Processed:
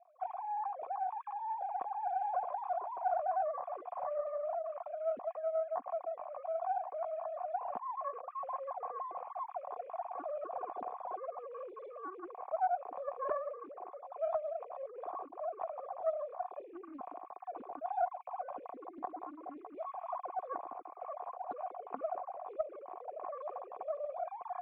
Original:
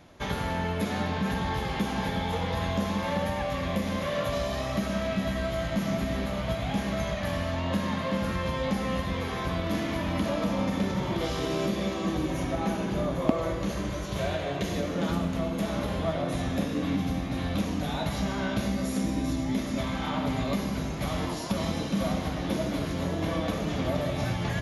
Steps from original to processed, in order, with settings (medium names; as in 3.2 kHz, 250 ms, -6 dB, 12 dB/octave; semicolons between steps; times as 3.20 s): formants replaced by sine waves; cascade formant filter a; loudspeaker Doppler distortion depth 0.21 ms; trim +1.5 dB